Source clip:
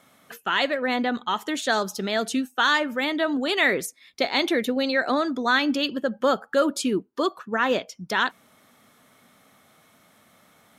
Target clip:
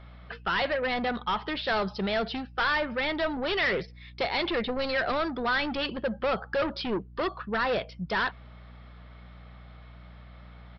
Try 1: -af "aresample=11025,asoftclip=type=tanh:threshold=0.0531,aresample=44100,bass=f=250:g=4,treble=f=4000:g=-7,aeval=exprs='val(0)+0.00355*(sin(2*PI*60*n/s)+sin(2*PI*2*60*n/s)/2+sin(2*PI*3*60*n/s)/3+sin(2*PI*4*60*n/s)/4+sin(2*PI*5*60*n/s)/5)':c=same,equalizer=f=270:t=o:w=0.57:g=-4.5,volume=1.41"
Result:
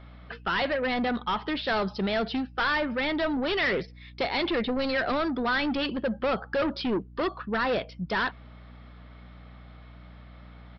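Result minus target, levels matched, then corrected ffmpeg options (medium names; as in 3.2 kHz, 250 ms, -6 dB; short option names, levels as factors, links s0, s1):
250 Hz band +3.5 dB
-af "aresample=11025,asoftclip=type=tanh:threshold=0.0531,aresample=44100,bass=f=250:g=4,treble=f=4000:g=-7,aeval=exprs='val(0)+0.00355*(sin(2*PI*60*n/s)+sin(2*PI*2*60*n/s)/2+sin(2*PI*3*60*n/s)/3+sin(2*PI*4*60*n/s)/4+sin(2*PI*5*60*n/s)/5)':c=same,equalizer=f=270:t=o:w=0.57:g=-11,volume=1.41"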